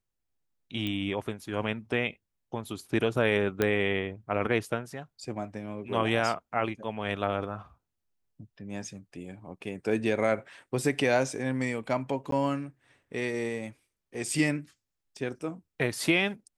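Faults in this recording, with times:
0.87 pop -20 dBFS
3.62 pop -12 dBFS
12.31–12.32 gap 13 ms

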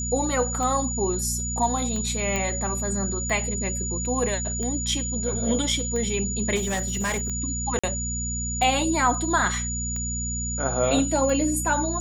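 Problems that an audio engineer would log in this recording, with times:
hum 60 Hz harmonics 4 -31 dBFS
tick 45 rpm -20 dBFS
tone 6900 Hz -29 dBFS
2.36 pop -12 dBFS
6.55–7.3 clipped -22 dBFS
7.79–7.83 gap 45 ms

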